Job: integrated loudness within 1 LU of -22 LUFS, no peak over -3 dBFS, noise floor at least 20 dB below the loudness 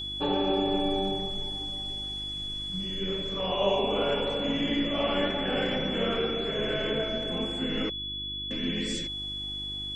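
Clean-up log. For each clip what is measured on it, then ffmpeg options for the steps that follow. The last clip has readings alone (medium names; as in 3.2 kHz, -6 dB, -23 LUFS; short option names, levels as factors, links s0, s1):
hum 50 Hz; highest harmonic 350 Hz; hum level -42 dBFS; steady tone 3.4 kHz; tone level -33 dBFS; loudness -29.0 LUFS; peak level -12.5 dBFS; loudness target -22.0 LUFS
-> -af "bandreject=f=50:t=h:w=4,bandreject=f=100:t=h:w=4,bandreject=f=150:t=h:w=4,bandreject=f=200:t=h:w=4,bandreject=f=250:t=h:w=4,bandreject=f=300:t=h:w=4,bandreject=f=350:t=h:w=4"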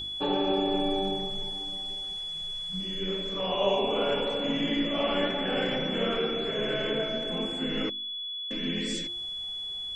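hum not found; steady tone 3.4 kHz; tone level -33 dBFS
-> -af "bandreject=f=3400:w=30"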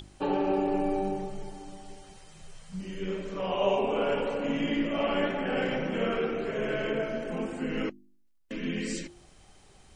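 steady tone not found; loudness -30.5 LUFS; peak level -12.5 dBFS; loudness target -22.0 LUFS
-> -af "volume=2.66"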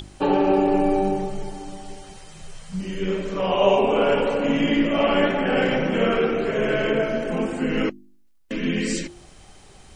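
loudness -22.0 LUFS; peak level -4.0 dBFS; noise floor -50 dBFS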